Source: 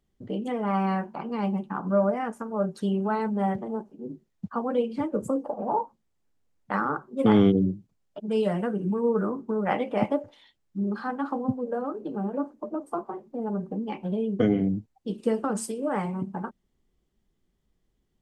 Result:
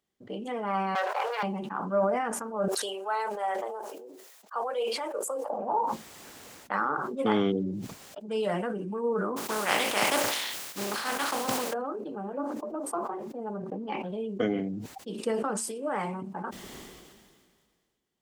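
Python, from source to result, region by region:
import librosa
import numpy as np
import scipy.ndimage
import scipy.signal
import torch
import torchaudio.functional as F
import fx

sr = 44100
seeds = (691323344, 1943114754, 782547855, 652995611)

y = fx.chain(x, sr, fx.comb(ms=3.8, depth=0.43),
    fx.leveller(passes=3),
    fx.cheby_ripple_highpass(hz=400.0, ripple_db=3), at=(0.95, 1.43))
y = fx.chain(y, sr, fx.highpass(hz=470.0, slope=24),
    fx.high_shelf(hz=7600.0, db=10.5),
    fx.sustainer(db_per_s=110.0), at=(2.68, 5.5))
y = fx.spec_flatten(y, sr, power=0.4, at=(9.36, 11.72), fade=0.02)
y = fx.sustainer(y, sr, db_per_s=130.0, at=(9.36, 11.72), fade=0.02)
y = fx.chain(y, sr, fx.high_shelf(hz=6200.0, db=-9.0),
    fx.transient(attack_db=2, sustain_db=-10),
    fx.env_flatten(amount_pct=50), at=(13.57, 14.09))
y = fx.highpass(y, sr, hz=590.0, slope=6)
y = fx.sustainer(y, sr, db_per_s=31.0)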